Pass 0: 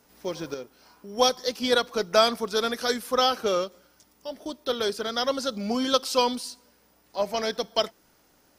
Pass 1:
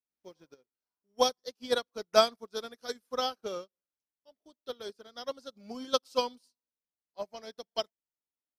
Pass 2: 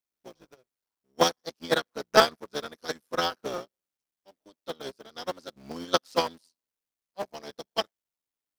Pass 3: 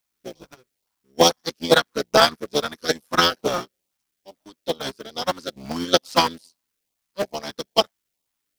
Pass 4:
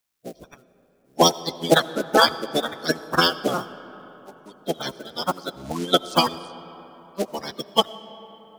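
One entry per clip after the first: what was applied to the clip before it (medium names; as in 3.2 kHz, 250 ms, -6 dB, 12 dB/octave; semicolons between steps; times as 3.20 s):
dynamic bell 1.9 kHz, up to -3 dB, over -37 dBFS, Q 0.78; upward expansion 2.5:1, over -45 dBFS
cycle switcher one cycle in 3, muted; dynamic bell 1.7 kHz, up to +6 dB, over -50 dBFS, Q 2; trim +4.5 dB
LFO notch saw up 2.3 Hz 300–1900 Hz; loudness maximiser +13 dB; trim -1 dB
coarse spectral quantiser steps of 30 dB; algorithmic reverb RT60 4.2 s, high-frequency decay 0.45×, pre-delay 45 ms, DRR 15.5 dB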